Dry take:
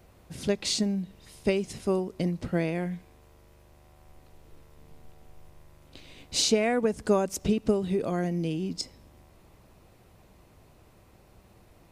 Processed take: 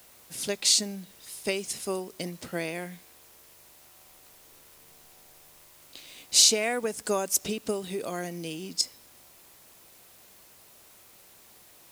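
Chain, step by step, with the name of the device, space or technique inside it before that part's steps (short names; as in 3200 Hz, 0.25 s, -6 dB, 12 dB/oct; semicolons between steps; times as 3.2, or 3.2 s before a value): turntable without a phono preamp (RIAA curve recording; white noise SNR 25 dB); gain -1 dB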